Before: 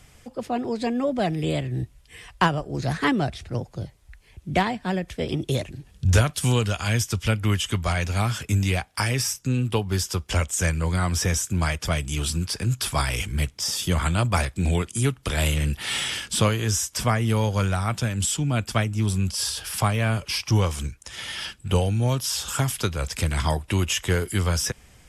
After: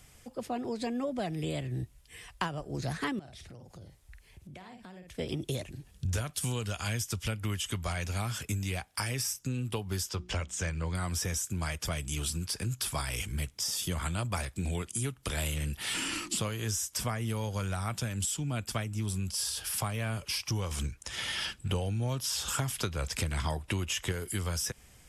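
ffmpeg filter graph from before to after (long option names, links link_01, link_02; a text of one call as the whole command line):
ffmpeg -i in.wav -filter_complex "[0:a]asettb=1/sr,asplit=3[link_01][link_02][link_03];[link_01]atrim=end=3.194[link_04];[link_02]atrim=start=3.19:end=5.15,asetpts=PTS-STARTPTS,afade=type=in:duration=0.004:curve=qsin,afade=type=out:start_time=1.956:duration=0.004:curve=qsin,asplit=2[link_05][link_06];[link_06]adelay=49,volume=-8.5dB[link_07];[link_05][link_07]amix=inputs=2:normalize=0,atrim=end_sample=86436,acompressor=threshold=-39dB:ratio=10:attack=3.2:release=140:knee=1:detection=peak[link_08];[link_03]atrim=start=5.146[link_09];[link_04][link_08]acrossfade=duration=0.004:curve1=hsin:curve2=qsin[link_10];[link_10][link_09]acrossfade=duration=0.004:curve1=qsin:curve2=hsin,asettb=1/sr,asplit=3[link_11][link_12][link_13];[link_11]atrim=end=10.094[link_14];[link_12]atrim=start=10.09:end=10.95,asetpts=PTS-STARTPTS,afade=type=in:duration=0.004:curve=qsin,afade=type=out:start_time=0.856:duration=0.004:curve=qsin,lowpass=5100,bandreject=frequency=60:width_type=h:width=6,bandreject=frequency=120:width_type=h:width=6,bandreject=frequency=180:width_type=h:width=6,bandreject=frequency=240:width_type=h:width=6,bandreject=frequency=300:width_type=h:width=6,bandreject=frequency=360:width_type=h:width=6[link_15];[link_13]atrim=start=10.946[link_16];[link_14][link_15]acrossfade=duration=0.004:curve1=hsin:curve2=qsin[link_17];[link_17][link_16]acrossfade=duration=0.004:curve1=qsin:curve2=hsin,asettb=1/sr,asplit=3[link_18][link_19][link_20];[link_18]atrim=end=15.944[link_21];[link_19]atrim=start=15.94:end=16.38,asetpts=PTS-STARTPTS,afade=type=in:duration=0.004:curve=qsin,afade=type=out:start_time=0.436:duration=0.004:curve=qsin,equalizer=frequency=99:width_type=o:width=2.3:gain=13.5,afreqshift=-410[link_22];[link_20]atrim=start=16.376[link_23];[link_21][link_22]acrossfade=duration=0.004:curve1=hsin:curve2=qsin[link_24];[link_24][link_23]acrossfade=duration=0.004:curve1=qsin:curve2=hsin,asettb=1/sr,asplit=3[link_25][link_26][link_27];[link_25]atrim=end=20.714[link_28];[link_26]atrim=start=20.71:end=24.12,asetpts=PTS-STARTPTS,afade=type=in:duration=0.004:curve=qsin,afade=type=out:start_time=3.406:duration=0.004:curve=qsin,acontrast=38,highshelf=frequency=7600:gain=-9[link_29];[link_27]atrim=start=24.116[link_30];[link_28][link_29]acrossfade=duration=0.004:curve1=hsin:curve2=qsin[link_31];[link_31][link_30]acrossfade=duration=0.004:curve1=qsin:curve2=hsin,highshelf=frequency=7300:gain=8,acompressor=threshold=-24dB:ratio=4,volume=-6dB" out.wav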